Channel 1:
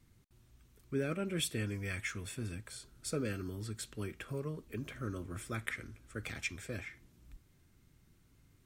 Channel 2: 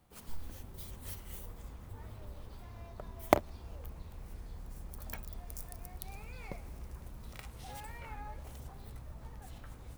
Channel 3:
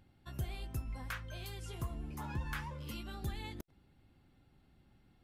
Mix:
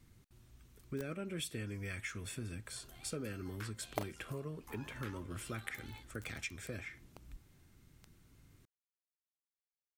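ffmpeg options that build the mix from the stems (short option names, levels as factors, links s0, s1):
-filter_complex "[0:a]acompressor=threshold=0.00631:ratio=2.5,volume=1.33[s0];[1:a]equalizer=f=100:w=1.2:g=-13.5,acrusher=bits=4:mix=0:aa=0.000001,adelay=650,volume=0.211[s1];[2:a]highpass=710,tremolo=f=81:d=0.621,adelay=2500,volume=0.596[s2];[s0][s1][s2]amix=inputs=3:normalize=0"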